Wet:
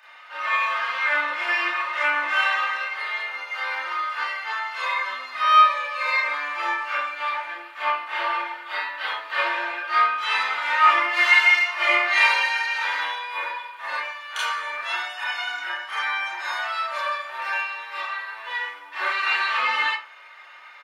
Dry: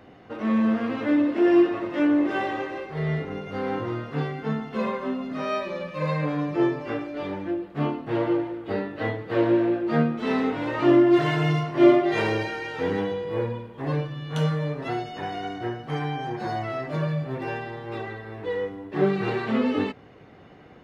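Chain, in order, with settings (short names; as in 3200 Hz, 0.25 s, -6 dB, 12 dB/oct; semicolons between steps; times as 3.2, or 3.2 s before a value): HPF 1100 Hz 24 dB/oct; comb 3.3 ms, depth 62%; reverb, pre-delay 27 ms, DRR -8 dB; gain +3.5 dB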